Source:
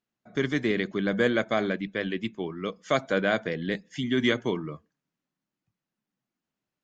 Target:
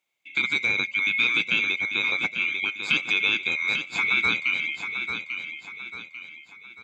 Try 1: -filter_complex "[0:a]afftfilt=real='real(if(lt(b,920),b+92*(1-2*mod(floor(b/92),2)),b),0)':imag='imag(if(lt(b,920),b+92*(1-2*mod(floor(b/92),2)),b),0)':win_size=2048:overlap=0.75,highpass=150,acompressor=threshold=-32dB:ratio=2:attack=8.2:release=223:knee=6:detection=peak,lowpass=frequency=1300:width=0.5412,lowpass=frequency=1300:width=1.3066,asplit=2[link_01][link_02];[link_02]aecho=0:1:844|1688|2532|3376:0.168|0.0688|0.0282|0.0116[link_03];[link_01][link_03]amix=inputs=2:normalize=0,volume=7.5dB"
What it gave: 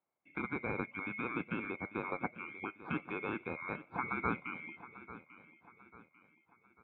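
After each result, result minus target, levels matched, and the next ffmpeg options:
1,000 Hz band +14.0 dB; echo-to-direct −8 dB
-filter_complex "[0:a]afftfilt=real='real(if(lt(b,920),b+92*(1-2*mod(floor(b/92),2)),b),0)':imag='imag(if(lt(b,920),b+92*(1-2*mod(floor(b/92),2)),b),0)':win_size=2048:overlap=0.75,highpass=150,acompressor=threshold=-32dB:ratio=2:attack=8.2:release=223:knee=6:detection=peak,asplit=2[link_01][link_02];[link_02]aecho=0:1:844|1688|2532|3376:0.168|0.0688|0.0282|0.0116[link_03];[link_01][link_03]amix=inputs=2:normalize=0,volume=7.5dB"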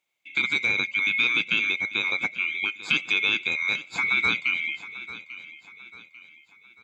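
echo-to-direct −8 dB
-filter_complex "[0:a]afftfilt=real='real(if(lt(b,920),b+92*(1-2*mod(floor(b/92),2)),b),0)':imag='imag(if(lt(b,920),b+92*(1-2*mod(floor(b/92),2)),b),0)':win_size=2048:overlap=0.75,highpass=150,acompressor=threshold=-32dB:ratio=2:attack=8.2:release=223:knee=6:detection=peak,asplit=2[link_01][link_02];[link_02]aecho=0:1:844|1688|2532|3376|4220:0.422|0.173|0.0709|0.0291|0.0119[link_03];[link_01][link_03]amix=inputs=2:normalize=0,volume=7.5dB"

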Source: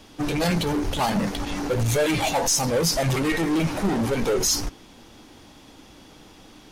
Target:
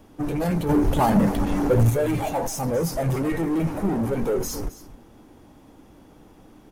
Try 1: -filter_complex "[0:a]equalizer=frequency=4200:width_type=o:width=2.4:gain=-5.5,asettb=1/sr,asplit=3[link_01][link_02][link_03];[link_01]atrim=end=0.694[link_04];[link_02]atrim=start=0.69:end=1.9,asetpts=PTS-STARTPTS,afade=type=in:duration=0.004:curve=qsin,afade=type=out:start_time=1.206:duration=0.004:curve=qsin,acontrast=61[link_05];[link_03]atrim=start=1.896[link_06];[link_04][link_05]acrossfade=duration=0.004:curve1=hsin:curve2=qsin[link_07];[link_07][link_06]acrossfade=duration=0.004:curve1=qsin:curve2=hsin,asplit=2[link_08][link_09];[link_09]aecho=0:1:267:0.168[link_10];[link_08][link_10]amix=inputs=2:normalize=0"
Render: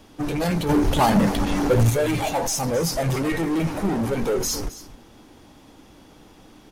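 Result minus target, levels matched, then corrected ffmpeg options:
4,000 Hz band +8.0 dB
-filter_complex "[0:a]equalizer=frequency=4200:width_type=o:width=2.4:gain=-15.5,asettb=1/sr,asplit=3[link_01][link_02][link_03];[link_01]atrim=end=0.694[link_04];[link_02]atrim=start=0.69:end=1.9,asetpts=PTS-STARTPTS,afade=type=in:duration=0.004:curve=qsin,afade=type=out:start_time=1.206:duration=0.004:curve=qsin,acontrast=61[link_05];[link_03]atrim=start=1.896[link_06];[link_04][link_05]acrossfade=duration=0.004:curve1=hsin:curve2=qsin[link_07];[link_07][link_06]acrossfade=duration=0.004:curve1=qsin:curve2=hsin,asplit=2[link_08][link_09];[link_09]aecho=0:1:267:0.168[link_10];[link_08][link_10]amix=inputs=2:normalize=0"

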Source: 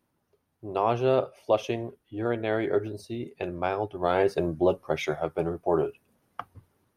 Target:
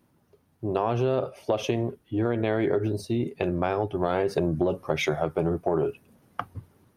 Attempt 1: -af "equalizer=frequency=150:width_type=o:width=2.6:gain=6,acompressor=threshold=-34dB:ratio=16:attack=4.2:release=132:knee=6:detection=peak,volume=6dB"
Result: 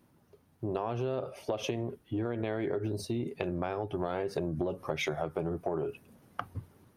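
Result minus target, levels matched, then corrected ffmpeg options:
downward compressor: peak gain reduction +8.5 dB
-af "equalizer=frequency=150:width_type=o:width=2.6:gain=6,acompressor=threshold=-25dB:ratio=16:attack=4.2:release=132:knee=6:detection=peak,volume=6dB"

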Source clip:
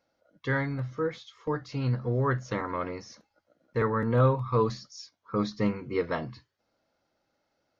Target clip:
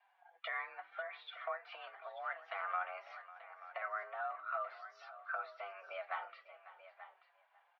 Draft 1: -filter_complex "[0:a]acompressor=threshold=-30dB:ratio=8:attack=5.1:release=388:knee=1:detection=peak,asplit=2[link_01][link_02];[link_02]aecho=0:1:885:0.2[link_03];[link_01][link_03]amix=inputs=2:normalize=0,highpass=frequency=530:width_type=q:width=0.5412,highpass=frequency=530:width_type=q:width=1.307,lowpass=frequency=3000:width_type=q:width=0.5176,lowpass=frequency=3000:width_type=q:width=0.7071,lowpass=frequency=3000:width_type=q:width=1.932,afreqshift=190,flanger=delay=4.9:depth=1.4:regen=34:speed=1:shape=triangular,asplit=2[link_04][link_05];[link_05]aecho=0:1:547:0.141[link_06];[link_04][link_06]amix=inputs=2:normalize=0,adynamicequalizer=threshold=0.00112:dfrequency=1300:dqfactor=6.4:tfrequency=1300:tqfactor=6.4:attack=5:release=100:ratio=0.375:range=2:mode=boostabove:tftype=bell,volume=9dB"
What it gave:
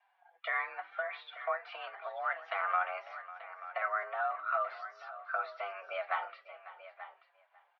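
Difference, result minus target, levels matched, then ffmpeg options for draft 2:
downward compressor: peak gain reduction −7 dB
-filter_complex "[0:a]acompressor=threshold=-38dB:ratio=8:attack=5.1:release=388:knee=1:detection=peak,asplit=2[link_01][link_02];[link_02]aecho=0:1:885:0.2[link_03];[link_01][link_03]amix=inputs=2:normalize=0,highpass=frequency=530:width_type=q:width=0.5412,highpass=frequency=530:width_type=q:width=1.307,lowpass=frequency=3000:width_type=q:width=0.5176,lowpass=frequency=3000:width_type=q:width=0.7071,lowpass=frequency=3000:width_type=q:width=1.932,afreqshift=190,flanger=delay=4.9:depth=1.4:regen=34:speed=1:shape=triangular,asplit=2[link_04][link_05];[link_05]aecho=0:1:547:0.141[link_06];[link_04][link_06]amix=inputs=2:normalize=0,adynamicequalizer=threshold=0.00112:dfrequency=1300:dqfactor=6.4:tfrequency=1300:tqfactor=6.4:attack=5:release=100:ratio=0.375:range=2:mode=boostabove:tftype=bell,volume=9dB"

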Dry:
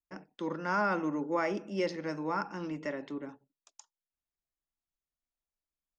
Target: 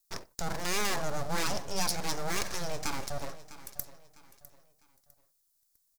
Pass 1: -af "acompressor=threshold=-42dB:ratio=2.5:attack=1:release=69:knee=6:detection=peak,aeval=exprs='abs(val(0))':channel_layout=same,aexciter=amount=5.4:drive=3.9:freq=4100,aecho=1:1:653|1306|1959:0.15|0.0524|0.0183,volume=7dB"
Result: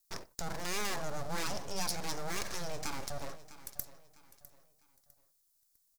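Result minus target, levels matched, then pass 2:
downward compressor: peak gain reduction +5 dB
-af "acompressor=threshold=-33.5dB:ratio=2.5:attack=1:release=69:knee=6:detection=peak,aeval=exprs='abs(val(0))':channel_layout=same,aexciter=amount=5.4:drive=3.9:freq=4100,aecho=1:1:653|1306|1959:0.15|0.0524|0.0183,volume=7dB"

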